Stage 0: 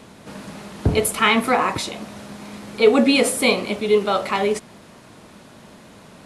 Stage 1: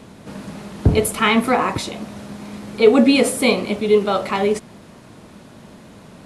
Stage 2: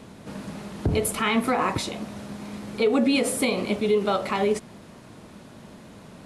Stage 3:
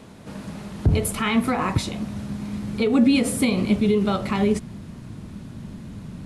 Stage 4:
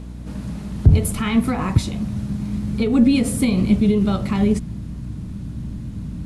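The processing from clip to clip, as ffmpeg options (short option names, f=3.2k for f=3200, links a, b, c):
-af "lowshelf=f=450:g=6,volume=-1dB"
-af "alimiter=limit=-10.5dB:level=0:latency=1:release=107,volume=-3dB"
-af "asubboost=boost=6:cutoff=220"
-af "bass=f=250:g=10,treble=f=4k:g=3,aeval=exprs='val(0)+0.0316*(sin(2*PI*60*n/s)+sin(2*PI*2*60*n/s)/2+sin(2*PI*3*60*n/s)/3+sin(2*PI*4*60*n/s)/4+sin(2*PI*5*60*n/s)/5)':c=same,aeval=exprs='1.19*(cos(1*acos(clip(val(0)/1.19,-1,1)))-cos(1*PI/2))+0.0422*(cos(4*acos(clip(val(0)/1.19,-1,1)))-cos(4*PI/2))':c=same,volume=-2.5dB"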